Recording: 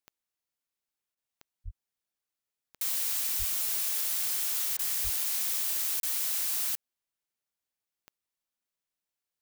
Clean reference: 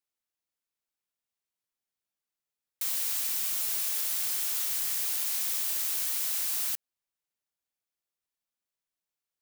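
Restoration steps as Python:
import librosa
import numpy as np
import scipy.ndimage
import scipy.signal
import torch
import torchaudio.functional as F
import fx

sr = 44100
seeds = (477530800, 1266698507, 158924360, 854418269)

y = fx.fix_declick_ar(x, sr, threshold=10.0)
y = fx.fix_deplosive(y, sr, at_s=(1.64, 3.38, 5.03))
y = fx.fix_interpolate(y, sr, at_s=(6.0,), length_ms=32.0)
y = fx.fix_interpolate(y, sr, at_s=(1.15, 4.77), length_ms=20.0)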